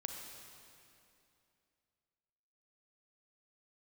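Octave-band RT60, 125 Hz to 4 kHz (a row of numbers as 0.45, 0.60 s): 2.8, 3.0, 2.8, 2.6, 2.5, 2.4 s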